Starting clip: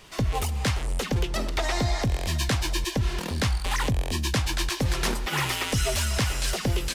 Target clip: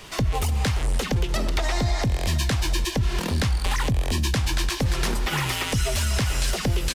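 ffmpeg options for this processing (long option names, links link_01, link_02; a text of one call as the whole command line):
ffmpeg -i in.wav -filter_complex "[0:a]acompressor=threshold=-26dB:ratio=6,aecho=1:1:295:0.106,acrossover=split=220[link_01][link_02];[link_02]acompressor=threshold=-38dB:ratio=1.5[link_03];[link_01][link_03]amix=inputs=2:normalize=0,volume=7.5dB" out.wav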